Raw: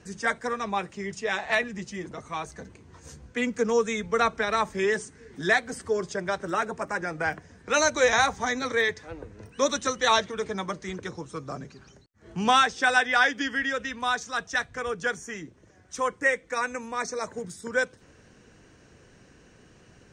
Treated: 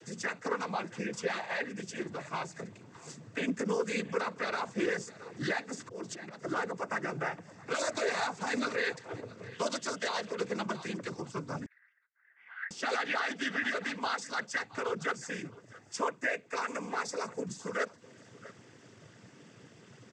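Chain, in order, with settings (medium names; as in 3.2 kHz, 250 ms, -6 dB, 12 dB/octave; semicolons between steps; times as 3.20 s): in parallel at 0 dB: compression, threshold -37 dBFS, peak gain reduction 20 dB; 5.80–6.42 s: on the sum: slow attack 229 ms; on a send: delay 668 ms -22 dB; on the sum: peak limiter -17.5 dBFS, peak gain reduction 10.5 dB; noise-vocoded speech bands 16; 11.66–12.71 s: Butterworth band-pass 1.8 kHz, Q 4; trim -5.5 dB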